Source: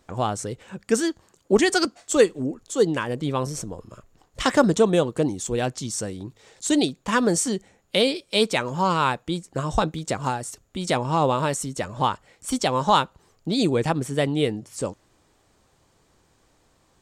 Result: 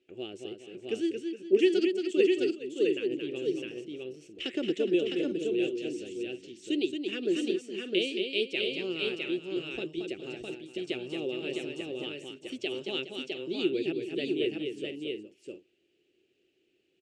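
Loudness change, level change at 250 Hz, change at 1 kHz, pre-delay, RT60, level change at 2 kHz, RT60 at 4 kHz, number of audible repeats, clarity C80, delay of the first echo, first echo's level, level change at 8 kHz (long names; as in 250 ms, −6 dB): −7.5 dB, −6.0 dB, −29.0 dB, no reverb audible, no reverb audible, −8.0 dB, no reverb audible, 4, no reverb audible, 225 ms, −5.5 dB, −22.5 dB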